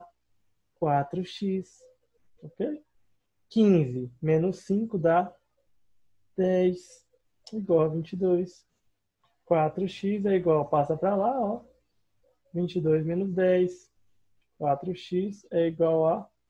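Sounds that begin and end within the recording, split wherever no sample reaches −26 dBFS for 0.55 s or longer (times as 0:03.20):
0:00.82–0:01.60
0:02.60–0:02.70
0:03.56–0:05.22
0:06.39–0:06.72
0:07.56–0:08.44
0:09.51–0:11.55
0:12.56–0:13.67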